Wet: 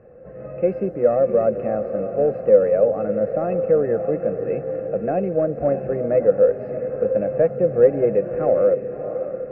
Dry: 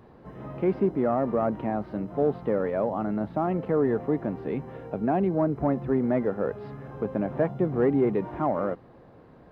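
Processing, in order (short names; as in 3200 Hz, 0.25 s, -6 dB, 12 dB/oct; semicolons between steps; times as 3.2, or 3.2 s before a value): tracing distortion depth 0.028 ms; fixed phaser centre 950 Hz, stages 6; low-pass opened by the level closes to 2300 Hz, open at -24 dBFS; small resonant body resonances 250/510/2600 Hz, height 18 dB, ringing for 55 ms; on a send: diffused feedback echo 0.626 s, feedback 46%, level -9.5 dB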